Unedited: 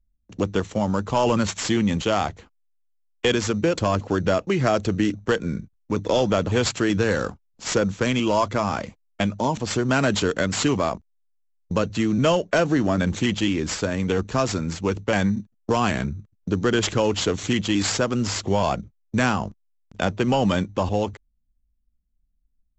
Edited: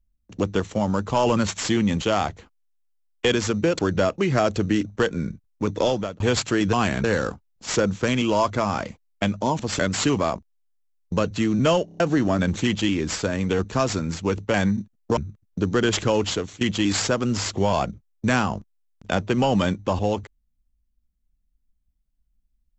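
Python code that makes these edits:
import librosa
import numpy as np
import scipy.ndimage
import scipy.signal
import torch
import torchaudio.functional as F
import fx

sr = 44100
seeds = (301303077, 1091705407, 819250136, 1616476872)

y = fx.edit(x, sr, fx.cut(start_s=3.79, length_s=0.29),
    fx.fade_out_span(start_s=6.12, length_s=0.37),
    fx.cut(start_s=9.77, length_s=0.61),
    fx.stutter_over(start_s=12.44, slice_s=0.03, count=5),
    fx.move(start_s=15.76, length_s=0.31, to_s=7.02),
    fx.fade_out_to(start_s=17.15, length_s=0.36, floor_db=-21.5), tone=tone)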